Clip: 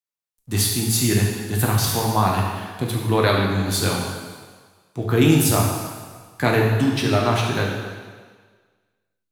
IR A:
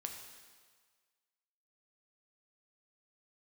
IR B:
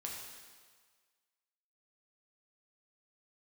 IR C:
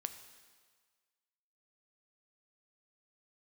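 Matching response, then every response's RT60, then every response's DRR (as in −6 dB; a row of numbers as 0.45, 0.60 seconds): B; 1.6, 1.6, 1.6 seconds; 3.0, −2.5, 8.5 decibels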